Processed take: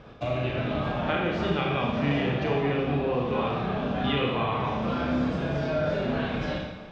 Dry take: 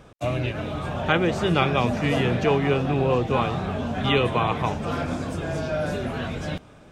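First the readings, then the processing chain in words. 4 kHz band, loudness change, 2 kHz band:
−4.0 dB, −3.0 dB, −3.5 dB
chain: downward compressor 3 to 1, threshold −29 dBFS, peak gain reduction 10.5 dB
low-pass filter 4,700 Hz 24 dB per octave
four-comb reverb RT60 1 s, combs from 28 ms, DRR −1.5 dB

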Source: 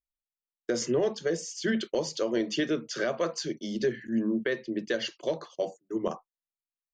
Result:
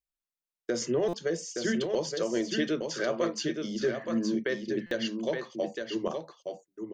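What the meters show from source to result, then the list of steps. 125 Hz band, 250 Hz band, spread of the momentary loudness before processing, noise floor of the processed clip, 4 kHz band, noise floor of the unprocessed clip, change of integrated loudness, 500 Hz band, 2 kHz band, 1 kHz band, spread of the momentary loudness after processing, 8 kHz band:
0.0 dB, −0.5 dB, 6 LU, below −85 dBFS, −0.5 dB, below −85 dBFS, −0.5 dB, −0.5 dB, −0.5 dB, −0.5 dB, 6 LU, −0.5 dB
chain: single-tap delay 870 ms −5.5 dB
buffer that repeats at 0:01.08/0:04.86, samples 256, times 8
level −1.5 dB

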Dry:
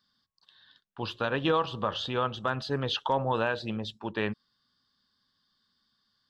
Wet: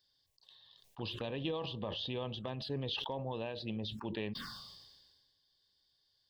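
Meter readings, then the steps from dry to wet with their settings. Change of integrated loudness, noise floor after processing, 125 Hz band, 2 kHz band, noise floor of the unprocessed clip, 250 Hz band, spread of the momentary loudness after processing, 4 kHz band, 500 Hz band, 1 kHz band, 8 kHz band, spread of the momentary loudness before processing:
−9.5 dB, −77 dBFS, −6.0 dB, −13.5 dB, −76 dBFS, −7.0 dB, 14 LU, −5.0 dB, −9.5 dB, −15.5 dB, can't be measured, 8 LU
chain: downward compressor 2.5 to 1, threshold −38 dBFS, peak gain reduction 11 dB
phaser swept by the level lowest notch 210 Hz, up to 1,400 Hz, full sweep at −37 dBFS
level that may fall only so fast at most 35 dB per second

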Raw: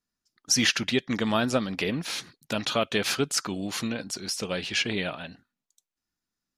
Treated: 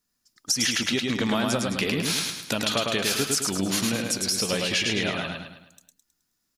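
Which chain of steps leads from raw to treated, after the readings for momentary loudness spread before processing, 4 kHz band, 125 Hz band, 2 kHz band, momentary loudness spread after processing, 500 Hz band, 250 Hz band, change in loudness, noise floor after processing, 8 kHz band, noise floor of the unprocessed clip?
11 LU, +3.0 dB, +2.5 dB, +2.0 dB, 5 LU, +1.0 dB, +2.0 dB, +2.5 dB, −76 dBFS, +4.5 dB, below −85 dBFS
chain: high-shelf EQ 6,400 Hz +9 dB
downward compressor 6 to 1, threshold −28 dBFS, peak gain reduction 13 dB
repeating echo 106 ms, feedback 45%, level −3 dB
level +5 dB

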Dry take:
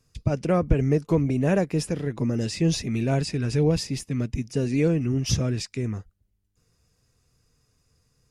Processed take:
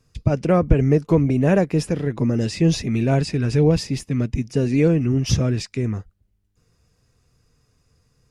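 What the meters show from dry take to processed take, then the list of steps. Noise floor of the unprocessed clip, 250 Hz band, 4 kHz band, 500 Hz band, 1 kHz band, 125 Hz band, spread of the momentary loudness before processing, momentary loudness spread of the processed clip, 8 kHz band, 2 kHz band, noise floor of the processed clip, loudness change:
−70 dBFS, +5.0 dB, +2.0 dB, +5.0 dB, +5.0 dB, +5.0 dB, 6 LU, 7 LU, +0.5 dB, +4.0 dB, −66 dBFS, +5.0 dB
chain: high-shelf EQ 4,600 Hz −6.5 dB
level +5 dB

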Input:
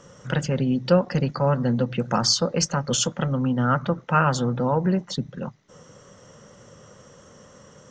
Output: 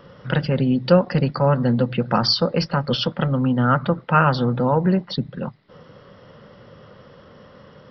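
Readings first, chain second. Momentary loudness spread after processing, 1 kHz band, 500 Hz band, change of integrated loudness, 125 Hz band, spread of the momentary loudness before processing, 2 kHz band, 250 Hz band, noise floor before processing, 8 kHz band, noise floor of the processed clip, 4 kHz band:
8 LU, +3.5 dB, +3.5 dB, +3.0 dB, +3.5 dB, 8 LU, +3.5 dB, +3.5 dB, −51 dBFS, below −15 dB, −48 dBFS, +2.5 dB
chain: downsampling to 11,025 Hz
level +3.5 dB

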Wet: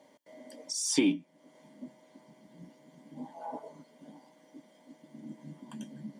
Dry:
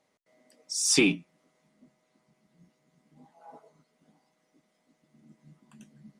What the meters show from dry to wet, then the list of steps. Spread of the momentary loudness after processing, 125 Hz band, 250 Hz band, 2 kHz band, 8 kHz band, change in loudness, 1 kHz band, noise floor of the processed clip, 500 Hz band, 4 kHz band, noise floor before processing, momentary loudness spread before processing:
24 LU, −5.5 dB, −0.5 dB, −11.0 dB, −6.0 dB, −8.5 dB, +5.5 dB, −63 dBFS, −5.0 dB, −6.5 dB, −74 dBFS, 14 LU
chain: downward compressor 2 to 1, threshold −50 dBFS, peak gain reduction 17.5 dB
notch comb filter 1,300 Hz
hollow resonant body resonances 280/570/900/3,200 Hz, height 10 dB, ringing for 35 ms
level +8.5 dB

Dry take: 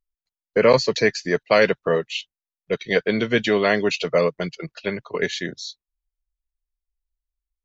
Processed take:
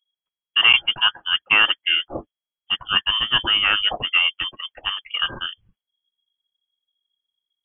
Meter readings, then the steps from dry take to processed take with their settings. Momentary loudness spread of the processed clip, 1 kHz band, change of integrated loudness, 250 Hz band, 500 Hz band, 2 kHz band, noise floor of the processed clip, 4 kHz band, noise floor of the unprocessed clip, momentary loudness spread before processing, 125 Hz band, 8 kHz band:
13 LU, 0.0 dB, +3.0 dB, −15.5 dB, −21.0 dB, +4.5 dB, below −85 dBFS, +13.5 dB, below −85 dBFS, 13 LU, −11.5 dB, can't be measured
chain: voice inversion scrambler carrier 3,300 Hz

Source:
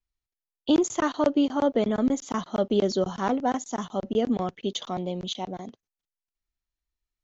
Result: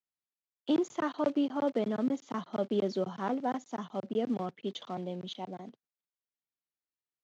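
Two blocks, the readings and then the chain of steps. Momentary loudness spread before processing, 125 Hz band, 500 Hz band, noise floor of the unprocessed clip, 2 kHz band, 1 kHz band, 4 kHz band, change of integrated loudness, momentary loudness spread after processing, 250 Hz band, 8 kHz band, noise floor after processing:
9 LU, −7.0 dB, −7.0 dB, below −85 dBFS, −7.5 dB, −7.0 dB, −10.0 dB, −7.0 dB, 10 LU, −7.0 dB, can't be measured, below −85 dBFS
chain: one scale factor per block 5 bits
high-pass filter 130 Hz 24 dB per octave
high-frequency loss of the air 150 metres
level −6.5 dB

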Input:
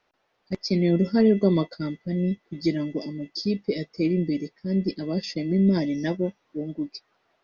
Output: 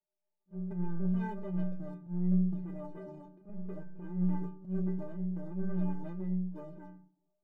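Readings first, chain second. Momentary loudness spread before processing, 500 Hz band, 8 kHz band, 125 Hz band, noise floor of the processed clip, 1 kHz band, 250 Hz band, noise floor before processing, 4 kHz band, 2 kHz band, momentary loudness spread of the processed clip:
12 LU, −18.5 dB, can't be measured, −7.0 dB, −84 dBFS, −7.5 dB, −11.0 dB, −72 dBFS, below −35 dB, below −15 dB, 16 LU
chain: Butterworth low-pass 930 Hz
brickwall limiter −19.5 dBFS, peak gain reduction 10 dB
leveller curve on the samples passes 2
stiff-string resonator 180 Hz, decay 0.56 s, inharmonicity 0.03
echo ahead of the sound 46 ms −22.5 dB
rectangular room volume 390 cubic metres, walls furnished, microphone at 0.55 metres
transient designer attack −11 dB, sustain +6 dB
one half of a high-frequency compander decoder only

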